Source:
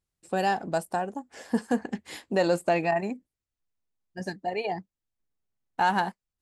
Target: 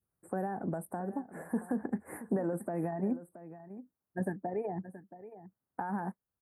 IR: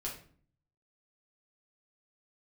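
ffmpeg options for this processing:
-filter_complex "[0:a]asuperstop=centerf=4100:order=8:qfactor=0.54,alimiter=level_in=1.06:limit=0.0631:level=0:latency=1:release=79,volume=0.944,highpass=77,equalizer=f=6900:w=6.8:g=-12.5,acrossover=split=340[s0][s1];[s1]acompressor=threshold=0.0126:ratio=6[s2];[s0][s2]amix=inputs=2:normalize=0,adynamicequalizer=threshold=0.00251:dfrequency=1100:dqfactor=0.74:tfrequency=1100:tqfactor=0.74:attack=5:release=100:ratio=0.375:range=2.5:mode=cutabove:tftype=bell,asplit=2[s3][s4];[s4]aecho=0:1:675:0.188[s5];[s3][s5]amix=inputs=2:normalize=0,volume=1.41"

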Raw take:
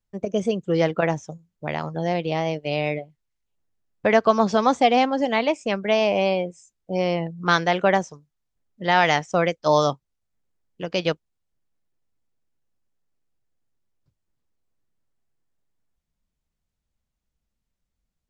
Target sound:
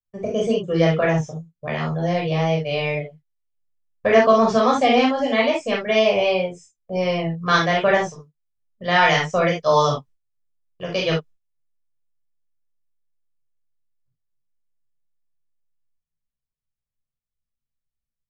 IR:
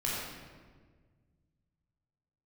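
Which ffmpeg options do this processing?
-filter_complex "[0:a]agate=range=0.158:threshold=0.00562:ratio=16:detection=peak[s0];[1:a]atrim=start_sample=2205,atrim=end_sample=3528[s1];[s0][s1]afir=irnorm=-1:irlink=0,volume=0.891"

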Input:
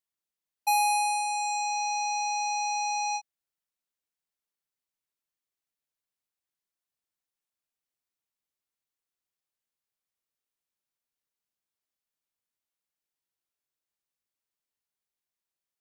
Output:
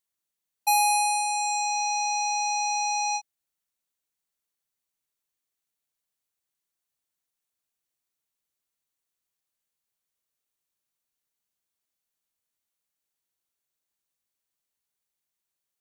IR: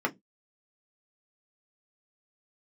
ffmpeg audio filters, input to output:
-af "bass=f=250:g=1,treble=f=4000:g=4,bandreject=f=5100:w=16,volume=1.26"

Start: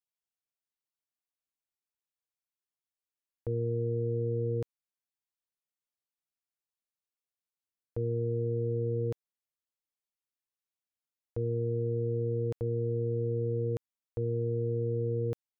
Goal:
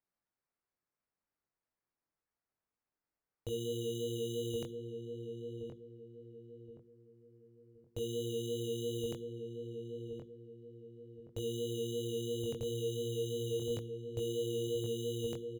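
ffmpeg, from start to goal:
-filter_complex "[0:a]bandreject=f=60:t=h:w=6,bandreject=f=120:t=h:w=6,bandreject=f=180:t=h:w=6,bandreject=f=240:t=h:w=6,bandreject=f=300:t=h:w=6,bandreject=f=360:t=h:w=6,bandreject=f=420:t=h:w=6,bandreject=f=480:t=h:w=6,acrusher=samples=13:mix=1:aa=0.000001,flanger=delay=20:depth=2.5:speed=2.9,asplit=2[s0][s1];[s1]adelay=1072,lowpass=f=870:p=1,volume=0.562,asplit=2[s2][s3];[s3]adelay=1072,lowpass=f=870:p=1,volume=0.39,asplit=2[s4][s5];[s5]adelay=1072,lowpass=f=870:p=1,volume=0.39,asplit=2[s6][s7];[s7]adelay=1072,lowpass=f=870:p=1,volume=0.39,asplit=2[s8][s9];[s9]adelay=1072,lowpass=f=870:p=1,volume=0.39[s10];[s0][s2][s4][s6][s8][s10]amix=inputs=6:normalize=0"

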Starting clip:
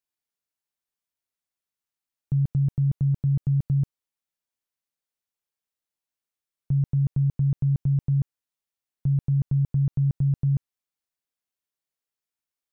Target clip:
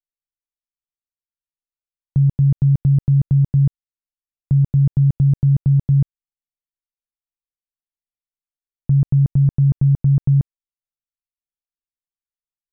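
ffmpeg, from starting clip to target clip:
-af "areverse,anlmdn=0.398,volume=2.51"

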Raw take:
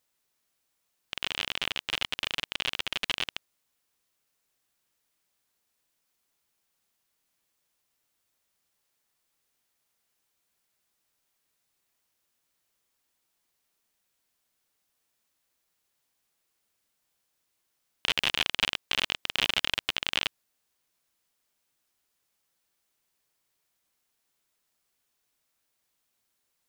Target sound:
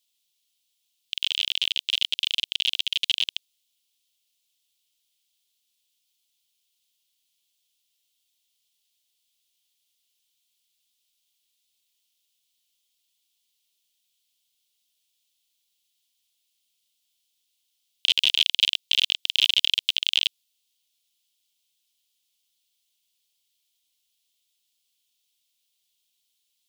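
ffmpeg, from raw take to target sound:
-af "highshelf=f=2200:t=q:w=3:g=13.5,volume=0.266"

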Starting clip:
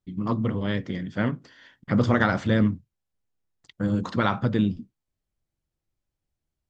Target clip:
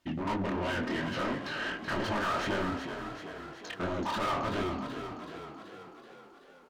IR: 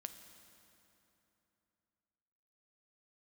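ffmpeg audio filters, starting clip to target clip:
-filter_complex "[0:a]bandreject=f=300.4:t=h:w=4,bandreject=f=600.8:t=h:w=4,bandreject=f=901.2:t=h:w=4,aeval=exprs='clip(val(0),-1,0.0355)':c=same,acompressor=threshold=0.0178:ratio=3,aecho=1:1:2.9:0.63,asetrate=39289,aresample=44100,atempo=1.12246,asplit=2[s0][s1];[s1]highpass=f=720:p=1,volume=31.6,asoftclip=type=tanh:threshold=0.0841[s2];[s0][s2]amix=inputs=2:normalize=0,lowpass=f=2800:p=1,volume=0.501,flanger=delay=19:depth=6.8:speed=2.8,asplit=9[s3][s4][s5][s6][s7][s8][s9][s10][s11];[s4]adelay=379,afreqshift=33,volume=0.376[s12];[s5]adelay=758,afreqshift=66,volume=0.229[s13];[s6]adelay=1137,afreqshift=99,volume=0.14[s14];[s7]adelay=1516,afreqshift=132,volume=0.0851[s15];[s8]adelay=1895,afreqshift=165,volume=0.0519[s16];[s9]adelay=2274,afreqshift=198,volume=0.0316[s17];[s10]adelay=2653,afreqshift=231,volume=0.0193[s18];[s11]adelay=3032,afreqshift=264,volume=0.0117[s19];[s3][s12][s13][s14][s15][s16][s17][s18][s19]amix=inputs=9:normalize=0"

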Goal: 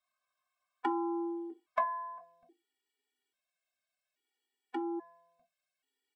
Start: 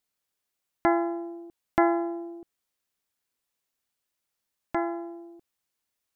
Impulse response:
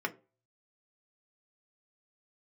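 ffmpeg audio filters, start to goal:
-filter_complex "[0:a]acrossover=split=260|1600[s0][s1][s2];[s0]acompressor=threshold=0.00355:ratio=4[s3];[s1]acompressor=threshold=0.0224:ratio=4[s4];[s2]acompressor=threshold=0.00316:ratio=4[s5];[s3][s4][s5]amix=inputs=3:normalize=0,asetnsamples=n=441:p=0,asendcmd='2.18 equalizer g -2.5',equalizer=f=1100:t=o:w=0.52:g=13,aecho=1:1:2.7:0.61[s6];[1:a]atrim=start_sample=2205,afade=t=out:st=0.37:d=0.01,atrim=end_sample=16758,asetrate=66150,aresample=44100[s7];[s6][s7]afir=irnorm=-1:irlink=0,afftfilt=real='re*gt(sin(2*PI*0.6*pts/sr)*(1-2*mod(floor(b*sr/1024/250),2)),0)':imag='im*gt(sin(2*PI*0.6*pts/sr)*(1-2*mod(floor(b*sr/1024/250),2)),0)':win_size=1024:overlap=0.75"

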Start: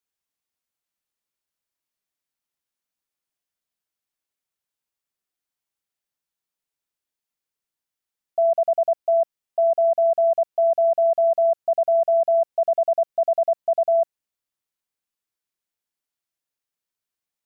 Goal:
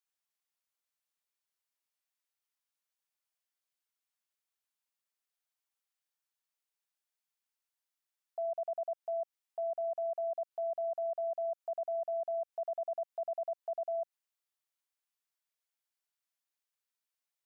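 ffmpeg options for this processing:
-af "highpass=630,alimiter=level_in=1.5:limit=0.0631:level=0:latency=1:release=103,volume=0.668,volume=0.668"

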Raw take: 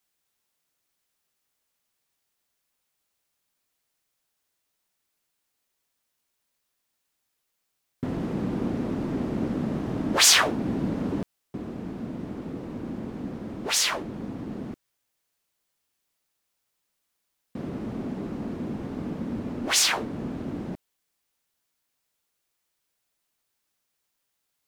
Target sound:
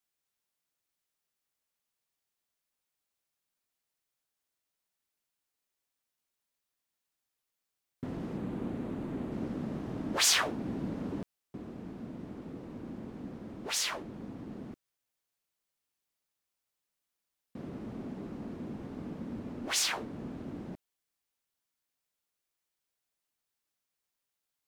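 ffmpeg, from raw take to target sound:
-filter_complex "[0:a]asettb=1/sr,asplit=3[s0][s1][s2];[s0]atrim=end=8.374[s3];[s1]atrim=start=8.37:end=9.32,asetpts=PTS-STARTPTS,afade=t=in:d=0.004:c=qsin,afade=t=out:st=0.946:d=0.004:c=qsin,equalizer=f=5300:w=2.5:g=-7.5[s4];[s2]atrim=start=9.316[s5];[s3][s4]acrossfade=d=0.004:c1=hsin:c2=qsin[s6];[s6][s5]acrossfade=d=0.004:c1=qsin:c2=hsin,volume=0.376"

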